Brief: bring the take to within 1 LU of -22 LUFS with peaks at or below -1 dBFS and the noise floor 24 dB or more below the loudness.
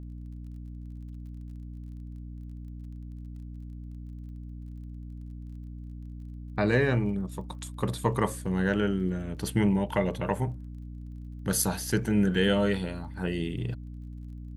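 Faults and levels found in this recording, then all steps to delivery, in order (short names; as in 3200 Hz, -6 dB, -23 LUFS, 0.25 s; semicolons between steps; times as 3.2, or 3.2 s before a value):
ticks 30/s; hum 60 Hz; harmonics up to 300 Hz; hum level -38 dBFS; loudness -28.5 LUFS; peak -11.5 dBFS; loudness target -22.0 LUFS
-> de-click; de-hum 60 Hz, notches 5; gain +6.5 dB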